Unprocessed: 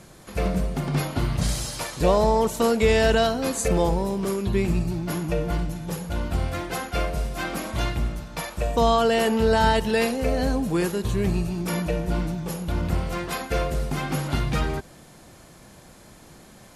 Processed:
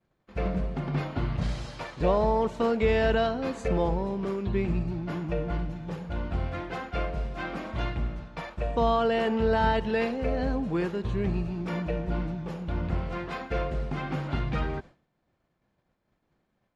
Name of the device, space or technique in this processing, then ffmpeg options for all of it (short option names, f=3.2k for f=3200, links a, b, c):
hearing-loss simulation: -af "lowpass=2.9k,agate=range=-33dB:threshold=-35dB:ratio=3:detection=peak,volume=-4.5dB"